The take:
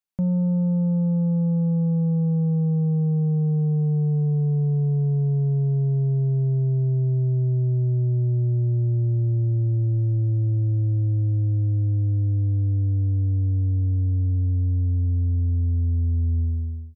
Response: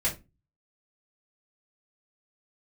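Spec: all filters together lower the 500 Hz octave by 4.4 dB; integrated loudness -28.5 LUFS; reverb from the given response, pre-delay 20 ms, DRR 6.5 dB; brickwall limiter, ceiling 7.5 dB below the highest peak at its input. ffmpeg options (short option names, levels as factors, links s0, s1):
-filter_complex "[0:a]equalizer=f=500:t=o:g=-5.5,alimiter=level_in=1.26:limit=0.0631:level=0:latency=1,volume=0.794,asplit=2[s0][s1];[1:a]atrim=start_sample=2205,adelay=20[s2];[s1][s2]afir=irnorm=-1:irlink=0,volume=0.188[s3];[s0][s3]amix=inputs=2:normalize=0,volume=0.891"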